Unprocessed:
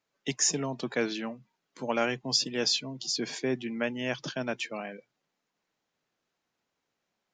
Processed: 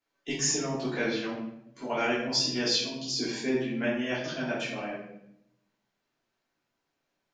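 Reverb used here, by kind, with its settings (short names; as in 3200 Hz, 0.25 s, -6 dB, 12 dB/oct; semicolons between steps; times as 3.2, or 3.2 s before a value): shoebox room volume 210 m³, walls mixed, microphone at 3.2 m; gain -9 dB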